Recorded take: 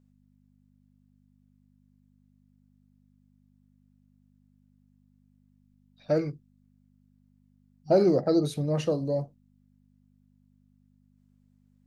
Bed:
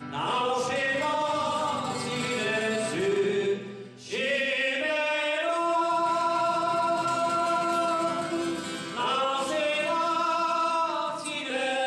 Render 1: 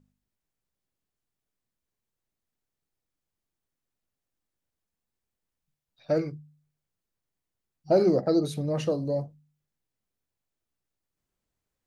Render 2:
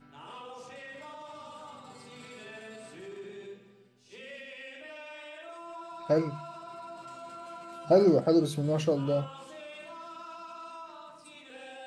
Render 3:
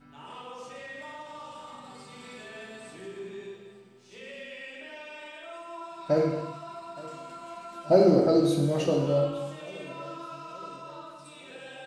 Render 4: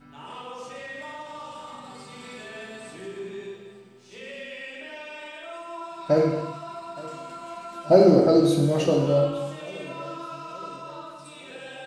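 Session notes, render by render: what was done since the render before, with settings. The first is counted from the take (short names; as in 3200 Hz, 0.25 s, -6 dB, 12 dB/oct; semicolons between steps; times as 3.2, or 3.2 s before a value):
de-hum 50 Hz, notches 5
add bed -18.5 dB
feedback echo 0.872 s, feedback 51%, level -20.5 dB; non-linear reverb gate 0.36 s falling, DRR 0.5 dB
gain +4 dB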